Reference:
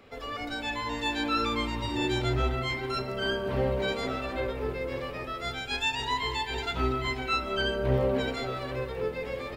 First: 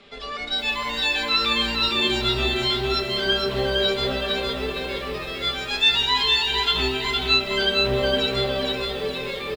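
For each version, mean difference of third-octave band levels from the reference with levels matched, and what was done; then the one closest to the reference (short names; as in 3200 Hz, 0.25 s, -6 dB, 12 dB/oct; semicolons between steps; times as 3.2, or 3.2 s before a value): 5.5 dB: steep low-pass 10000 Hz 96 dB/oct; bell 3600 Hz +14 dB 0.98 oct; comb 5 ms, depth 70%; lo-fi delay 0.461 s, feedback 35%, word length 8-bit, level -3 dB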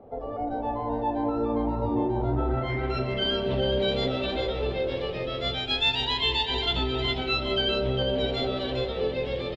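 7.0 dB: band shelf 1600 Hz -9 dB; limiter -23.5 dBFS, peak gain reduction 9.5 dB; low-pass sweep 830 Hz -> 3300 Hz, 2.09–3.25; on a send: echo 0.408 s -6 dB; on the sum: gain +4 dB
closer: first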